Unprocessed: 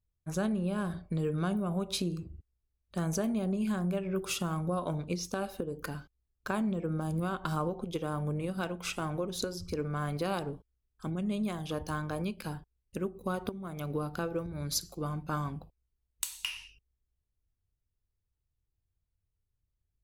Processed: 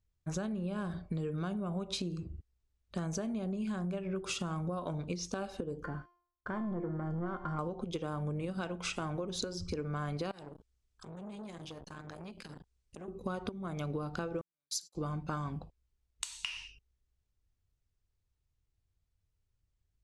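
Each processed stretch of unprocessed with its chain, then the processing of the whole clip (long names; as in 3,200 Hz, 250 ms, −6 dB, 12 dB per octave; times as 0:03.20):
0:05.84–0:07.59: leveller curve on the samples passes 3 + Savitzky-Golay smoothing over 41 samples + tuned comb filter 350 Hz, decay 0.55 s, mix 80%
0:10.31–0:13.08: high-shelf EQ 3,400 Hz +7 dB + downward compressor 12 to 1, threshold −41 dBFS + saturating transformer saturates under 2,000 Hz
0:14.41–0:14.95: first-order pre-emphasis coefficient 0.97 + noise gate −54 dBFS, range −40 dB + high-pass filter 110 Hz
whole clip: low-pass filter 8,200 Hz 24 dB per octave; downward compressor, threshold −36 dBFS; level +2.5 dB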